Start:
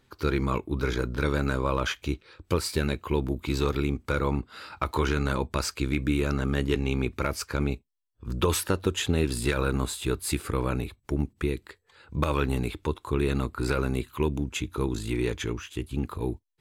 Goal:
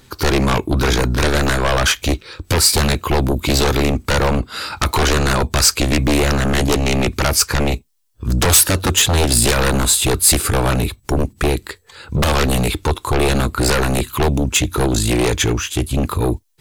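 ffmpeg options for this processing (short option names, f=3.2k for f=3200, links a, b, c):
-af "aeval=exprs='0.251*sin(PI/2*3.55*val(0)/0.251)':c=same,bass=f=250:g=2,treble=f=4k:g=8"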